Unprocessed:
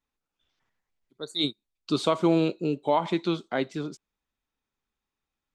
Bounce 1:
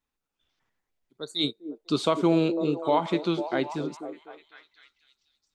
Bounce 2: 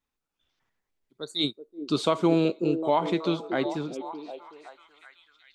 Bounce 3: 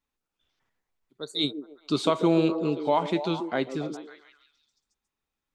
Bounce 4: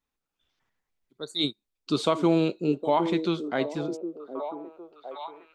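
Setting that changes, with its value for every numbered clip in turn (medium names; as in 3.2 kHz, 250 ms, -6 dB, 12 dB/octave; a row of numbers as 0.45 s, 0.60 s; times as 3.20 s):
repeats whose band climbs or falls, time: 250 ms, 377 ms, 139 ms, 760 ms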